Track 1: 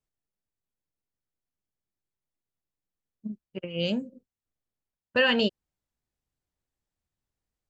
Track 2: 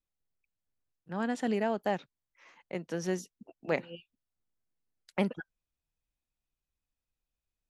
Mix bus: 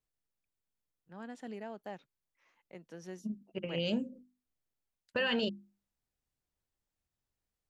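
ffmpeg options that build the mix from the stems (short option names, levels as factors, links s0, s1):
-filter_complex "[0:a]bandreject=f=50:t=h:w=6,bandreject=f=100:t=h:w=6,bandreject=f=150:t=h:w=6,bandreject=f=200:t=h:w=6,bandreject=f=250:t=h:w=6,bandreject=f=300:t=h:w=6,bandreject=f=350:t=h:w=6,volume=0.794[s0];[1:a]volume=0.211[s1];[s0][s1]amix=inputs=2:normalize=0,alimiter=limit=0.0668:level=0:latency=1:release=13"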